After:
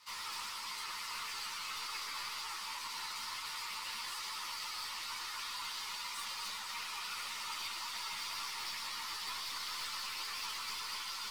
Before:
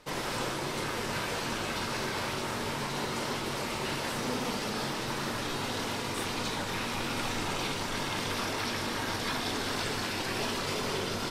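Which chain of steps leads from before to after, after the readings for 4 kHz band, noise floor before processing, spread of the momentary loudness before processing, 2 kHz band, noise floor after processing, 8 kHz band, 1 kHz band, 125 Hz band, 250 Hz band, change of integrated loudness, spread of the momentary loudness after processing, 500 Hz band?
-4.0 dB, -35 dBFS, 2 LU, -8.5 dB, -43 dBFS, -5.0 dB, -8.5 dB, under -25 dB, -30.0 dB, -7.0 dB, 1 LU, -28.0 dB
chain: notch 1600 Hz, Q 5.5; reverb removal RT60 1.1 s; steep high-pass 920 Hz 72 dB/oct; bell 4700 Hz +7 dB 0.23 oct; one-sided clip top -34 dBFS; crackle 300/s -54 dBFS; soft clip -38.5 dBFS, distortion -12 dB; on a send: multi-head echo 0.123 s, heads first and second, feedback 61%, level -9 dB; on the sum: ensemble effect; gain +2 dB

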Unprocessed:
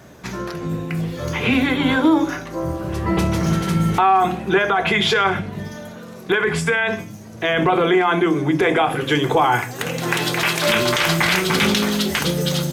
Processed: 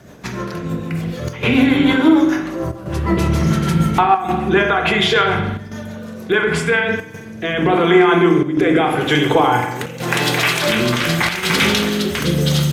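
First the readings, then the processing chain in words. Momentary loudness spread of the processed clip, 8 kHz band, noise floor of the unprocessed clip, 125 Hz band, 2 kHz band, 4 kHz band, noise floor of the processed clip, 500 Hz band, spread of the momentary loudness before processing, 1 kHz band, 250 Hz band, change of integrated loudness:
12 LU, +0.5 dB, -37 dBFS, +3.5 dB, +2.0 dB, +2.0 dB, -32 dBFS, +3.0 dB, 10 LU, +1.0 dB, +4.0 dB, +2.5 dB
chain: rotary speaker horn 6.7 Hz, later 0.85 Hz, at 6.33; spring tank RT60 1 s, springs 41 ms, chirp 30 ms, DRR 4 dB; chopper 0.7 Hz, depth 60%, duty 90%; gain +3.5 dB

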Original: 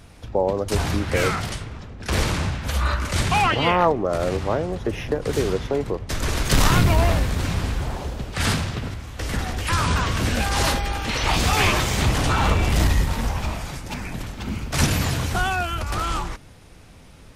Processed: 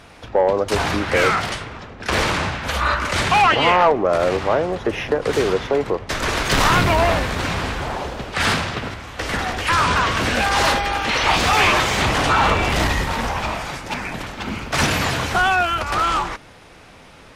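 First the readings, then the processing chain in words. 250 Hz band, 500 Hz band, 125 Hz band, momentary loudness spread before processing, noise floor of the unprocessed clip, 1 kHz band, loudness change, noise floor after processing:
+1.0 dB, +5.0 dB, -3.5 dB, 12 LU, -46 dBFS, +6.5 dB, +4.0 dB, -44 dBFS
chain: overdrive pedal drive 16 dB, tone 2400 Hz, clips at -4 dBFS

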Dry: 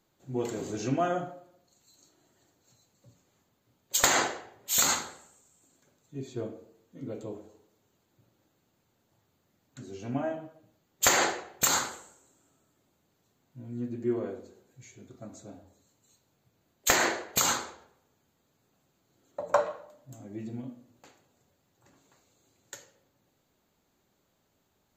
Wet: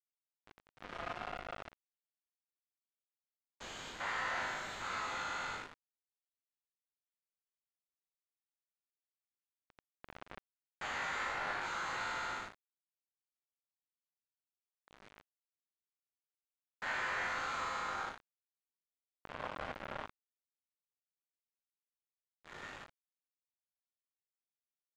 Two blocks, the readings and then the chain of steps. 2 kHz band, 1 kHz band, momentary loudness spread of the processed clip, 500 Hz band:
-5.5 dB, -6.5 dB, 18 LU, -15.5 dB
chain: stepped spectrum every 0.4 s; in parallel at -3.5 dB: overloaded stage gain 26 dB; on the sum: flutter echo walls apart 3.3 m, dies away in 1 s; soft clip -19.5 dBFS, distortion -13 dB; reverse; compressor 16:1, threshold -39 dBFS, peak gain reduction 17 dB; reverse; flange 1.4 Hz, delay 6.4 ms, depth 8.1 ms, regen -32%; HPF 1100 Hz 12 dB/oct; bit-crush 8-bit; LPF 1900 Hz 12 dB/oct; gain +13.5 dB

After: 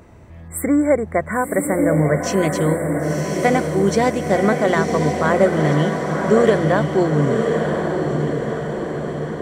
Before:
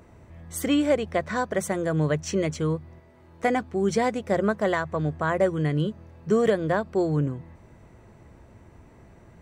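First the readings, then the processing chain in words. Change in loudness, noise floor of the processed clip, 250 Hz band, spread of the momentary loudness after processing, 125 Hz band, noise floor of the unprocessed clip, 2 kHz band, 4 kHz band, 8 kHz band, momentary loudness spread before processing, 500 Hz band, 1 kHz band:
+7.0 dB, -37 dBFS, +8.0 dB, 8 LU, +8.0 dB, -53 dBFS, +8.0 dB, +5.0 dB, +7.5 dB, 7 LU, +8.5 dB, +8.5 dB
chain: spectral delete 0.48–2.2, 2300–7300 Hz; diffused feedback echo 1.03 s, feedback 59%, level -3.5 dB; gain +6 dB

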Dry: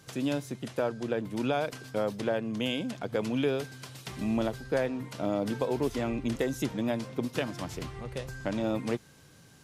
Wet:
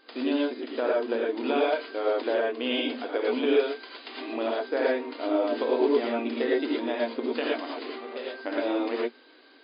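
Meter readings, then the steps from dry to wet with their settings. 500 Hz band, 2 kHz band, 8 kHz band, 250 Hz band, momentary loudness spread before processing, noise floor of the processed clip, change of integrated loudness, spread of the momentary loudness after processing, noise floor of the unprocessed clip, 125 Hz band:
+6.0 dB, +5.5 dB, under -35 dB, +2.0 dB, 7 LU, -55 dBFS, +4.0 dB, 11 LU, -56 dBFS, under -20 dB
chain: non-linear reverb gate 0.14 s rising, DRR -4 dB; FFT band-pass 230–5000 Hz

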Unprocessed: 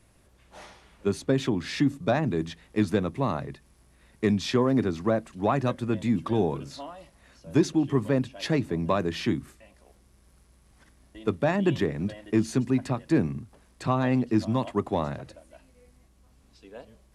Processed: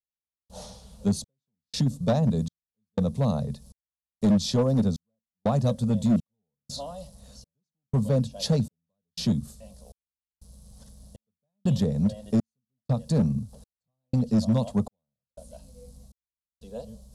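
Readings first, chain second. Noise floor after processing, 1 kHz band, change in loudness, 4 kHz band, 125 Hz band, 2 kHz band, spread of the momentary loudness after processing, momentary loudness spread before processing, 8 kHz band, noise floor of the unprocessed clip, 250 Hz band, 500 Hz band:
under -85 dBFS, -7.0 dB, +0.5 dB, +1.0 dB, +3.5 dB, -14.0 dB, 17 LU, 9 LU, +3.0 dB, -60 dBFS, -0.5 dB, -4.0 dB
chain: EQ curve 160 Hz 0 dB, 220 Hz +3 dB, 330 Hz -26 dB, 480 Hz -1 dB, 2100 Hz -25 dB, 4000 Hz -2 dB, 7500 Hz 0 dB; in parallel at -1 dB: compressor 16:1, threshold -39 dBFS, peak gain reduction 21.5 dB; on the sum: step gate "....xxxxxx" 121 bpm -60 dB; hard clip -21 dBFS, distortion -15 dB; gain +4.5 dB

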